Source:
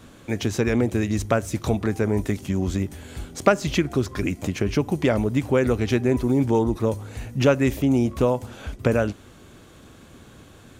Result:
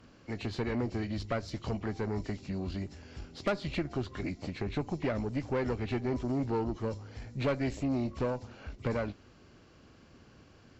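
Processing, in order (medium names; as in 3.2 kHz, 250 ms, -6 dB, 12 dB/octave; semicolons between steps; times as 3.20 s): knee-point frequency compression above 1.9 kHz 1.5:1; valve stage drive 16 dB, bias 0.55; trim -7.5 dB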